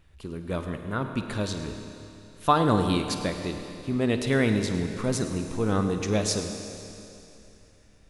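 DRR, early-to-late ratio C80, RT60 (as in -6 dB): 5.5 dB, 6.5 dB, 2.9 s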